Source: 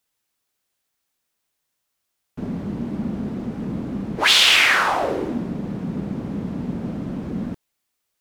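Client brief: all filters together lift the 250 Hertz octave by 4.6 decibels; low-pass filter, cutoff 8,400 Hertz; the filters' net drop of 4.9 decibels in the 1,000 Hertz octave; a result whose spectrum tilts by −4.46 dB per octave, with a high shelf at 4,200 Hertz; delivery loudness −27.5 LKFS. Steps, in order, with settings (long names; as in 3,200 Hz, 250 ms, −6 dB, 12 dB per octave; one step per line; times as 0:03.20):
low-pass filter 8,400 Hz
parametric band 250 Hz +6 dB
parametric band 1,000 Hz −6.5 dB
high-shelf EQ 4,200 Hz −5.5 dB
level −6 dB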